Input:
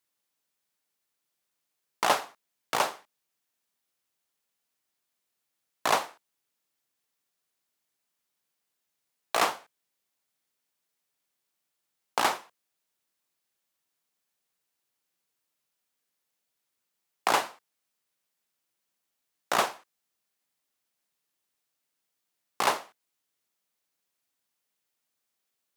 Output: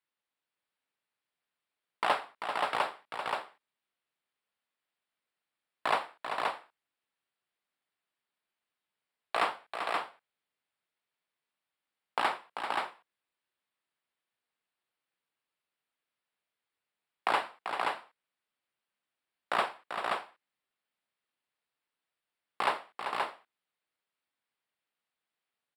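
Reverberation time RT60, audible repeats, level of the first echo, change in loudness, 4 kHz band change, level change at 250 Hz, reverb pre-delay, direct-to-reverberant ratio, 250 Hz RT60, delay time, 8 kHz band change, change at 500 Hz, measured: no reverb, 2, -8.0 dB, -5.0 dB, -4.5 dB, -4.5 dB, no reverb, no reverb, no reverb, 390 ms, -16.0 dB, -3.0 dB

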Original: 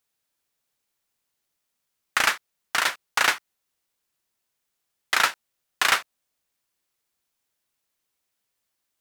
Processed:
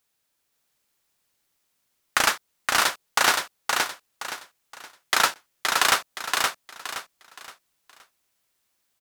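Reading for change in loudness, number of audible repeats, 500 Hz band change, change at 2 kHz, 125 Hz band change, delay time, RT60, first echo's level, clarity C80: -0.5 dB, 4, +5.0 dB, +0.5 dB, no reading, 520 ms, no reverb, -3.5 dB, no reverb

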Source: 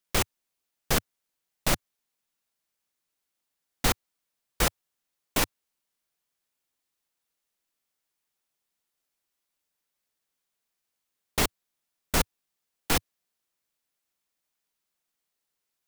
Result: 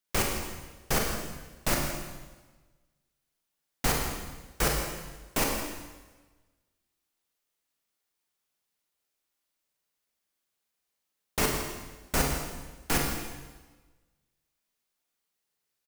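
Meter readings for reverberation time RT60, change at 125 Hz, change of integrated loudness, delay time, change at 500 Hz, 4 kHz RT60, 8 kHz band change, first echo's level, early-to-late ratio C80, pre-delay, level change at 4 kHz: 1.3 s, +1.0 dB, -2.0 dB, 41 ms, +1.0 dB, 1.2 s, 0.0 dB, -7.5 dB, 4.0 dB, 33 ms, -2.5 dB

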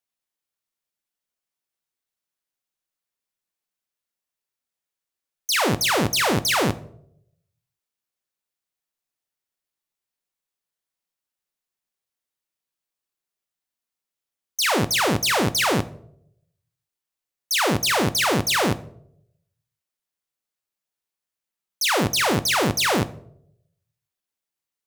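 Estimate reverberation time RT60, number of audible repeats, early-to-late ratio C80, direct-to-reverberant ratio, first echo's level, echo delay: 0.70 s, no echo, 21.0 dB, 10.5 dB, no echo, no echo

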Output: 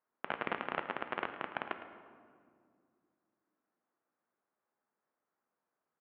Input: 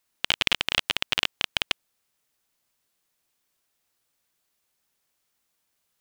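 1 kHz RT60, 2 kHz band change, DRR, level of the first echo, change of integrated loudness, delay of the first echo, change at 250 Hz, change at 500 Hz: 1.9 s, -12.0 dB, 7.0 dB, -13.5 dB, -14.0 dB, 109 ms, -3.5 dB, -1.0 dB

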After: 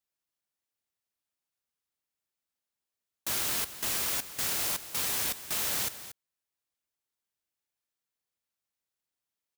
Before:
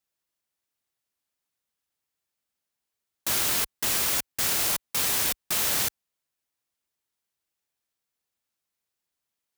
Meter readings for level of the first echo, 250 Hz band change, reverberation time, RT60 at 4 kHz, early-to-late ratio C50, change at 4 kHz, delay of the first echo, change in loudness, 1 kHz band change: -13.5 dB, -5.5 dB, no reverb, no reverb, no reverb, -5.5 dB, 233 ms, -5.5 dB, -5.5 dB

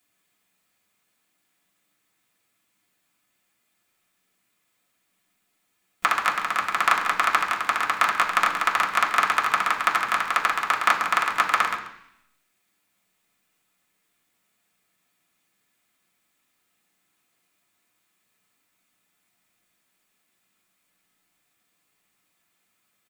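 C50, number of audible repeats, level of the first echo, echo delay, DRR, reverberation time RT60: 8.0 dB, 1, -12.5 dB, 137 ms, -3.0 dB, 0.70 s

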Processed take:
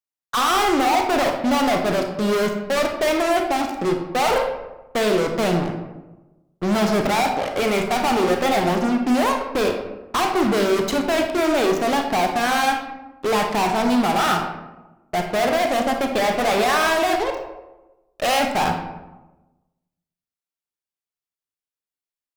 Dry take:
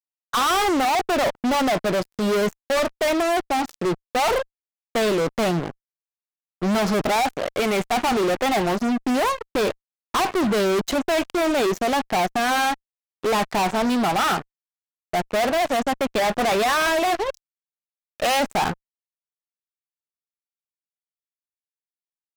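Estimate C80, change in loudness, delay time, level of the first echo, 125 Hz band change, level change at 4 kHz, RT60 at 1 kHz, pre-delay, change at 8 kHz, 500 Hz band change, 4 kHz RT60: 8.0 dB, +1.5 dB, no echo, no echo, +2.0 dB, +1.0 dB, 1.0 s, 29 ms, +0.5 dB, +2.0 dB, 0.55 s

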